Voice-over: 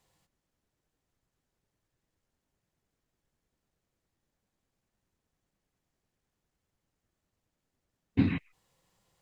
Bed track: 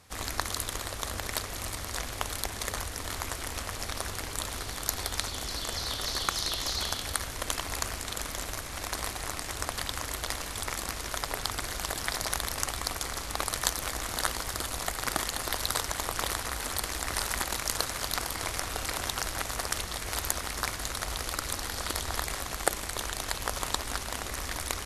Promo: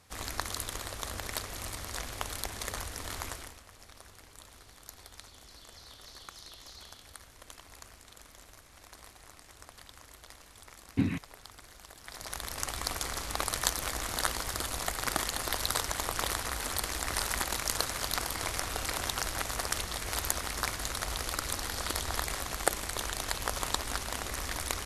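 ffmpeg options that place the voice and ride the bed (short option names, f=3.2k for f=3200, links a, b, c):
-filter_complex "[0:a]adelay=2800,volume=-2.5dB[a];[1:a]volume=13.5dB,afade=t=out:st=3.26:d=0.32:silence=0.188365,afade=t=in:st=12.02:d=0.91:silence=0.141254[b];[a][b]amix=inputs=2:normalize=0"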